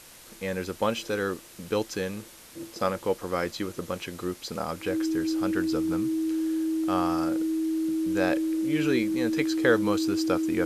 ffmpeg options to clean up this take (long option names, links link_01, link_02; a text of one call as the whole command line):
ffmpeg -i in.wav -af "adeclick=threshold=4,bandreject=frequency=320:width=30,afftdn=noise_reduction=26:noise_floor=-47" out.wav